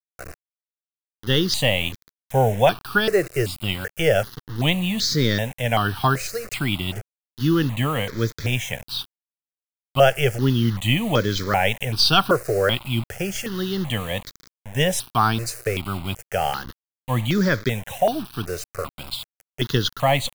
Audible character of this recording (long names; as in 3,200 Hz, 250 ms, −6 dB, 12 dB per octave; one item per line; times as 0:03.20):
a quantiser's noise floor 6 bits, dither none
notches that jump at a steady rate 2.6 Hz 900–2,800 Hz